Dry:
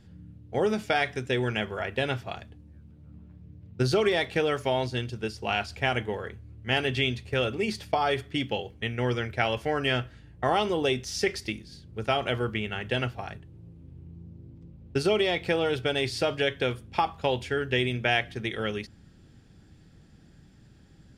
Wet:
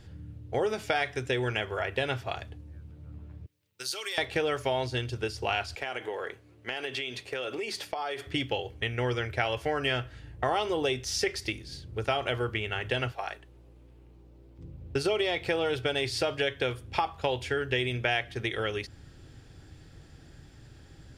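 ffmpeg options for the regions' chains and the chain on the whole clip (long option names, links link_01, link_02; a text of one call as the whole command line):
ffmpeg -i in.wav -filter_complex "[0:a]asettb=1/sr,asplit=3[link_01][link_02][link_03];[link_01]atrim=end=3.464[link_04];[link_02]atrim=start=3.46:end=4.18,asetpts=PTS-STARTPTS,afade=type=in:duration=0.004:curve=qsin,afade=type=out:start_time=0.716:duration=0.004:curve=qsin,asuperstop=centerf=690:order=4:qfactor=7.3,aderivative[link_05];[link_03]atrim=start=4.176[link_06];[link_04][link_05]acrossfade=duration=0.004:curve1=hsin:curve2=qsin[link_07];[link_07][link_06]acrossfade=duration=0.004:curve1=qsin:curve2=hsin,asettb=1/sr,asplit=3[link_08][link_09][link_10];[link_08]atrim=end=5.754[link_11];[link_09]atrim=start=5.75:end=8.27,asetpts=PTS-STARTPTS,afade=type=in:duration=0.004:curve=qsin,afade=type=out:start_time=2.516:duration=0.004:curve=qsin,highpass=280,acompressor=threshold=-34dB:ratio=5:attack=3.2:release=140:knee=1:detection=peak[link_12];[link_10]atrim=start=8.266[link_13];[link_11][link_12]acrossfade=duration=0.004:curve1=hsin:curve2=qsin[link_14];[link_14][link_13]acrossfade=duration=0.004:curve1=qsin:curve2=hsin,asettb=1/sr,asplit=3[link_15][link_16][link_17];[link_15]atrim=end=13.124[link_18];[link_16]atrim=start=13.12:end=14.59,asetpts=PTS-STARTPTS,afade=type=in:duration=0.004:curve=qsin,afade=type=out:start_time=1.466:duration=0.004:curve=qsin,highpass=490,aeval=exprs='val(0)+0.00126*(sin(2*PI*60*n/s)+sin(2*PI*2*60*n/s)/2+sin(2*PI*3*60*n/s)/3+sin(2*PI*4*60*n/s)/4+sin(2*PI*5*60*n/s)/5)':channel_layout=same[link_19];[link_17]atrim=start=14.586[link_20];[link_18][link_19]acrossfade=duration=0.004:curve1=hsin:curve2=qsin[link_21];[link_21][link_20]acrossfade=duration=0.004:curve1=qsin:curve2=hsin,equalizer=frequency=200:width_type=o:width=0.51:gain=-14,acompressor=threshold=-37dB:ratio=2,volume=6dB" out.wav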